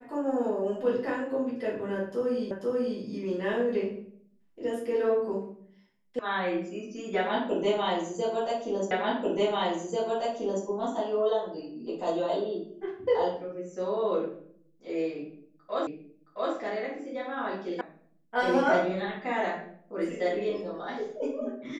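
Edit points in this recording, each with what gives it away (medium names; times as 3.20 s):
2.51 s: repeat of the last 0.49 s
6.19 s: sound stops dead
8.91 s: repeat of the last 1.74 s
15.87 s: repeat of the last 0.67 s
17.81 s: sound stops dead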